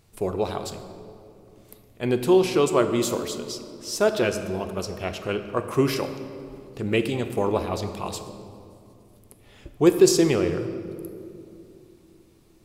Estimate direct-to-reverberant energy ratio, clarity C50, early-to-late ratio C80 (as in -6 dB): 8.0 dB, 9.5 dB, 10.0 dB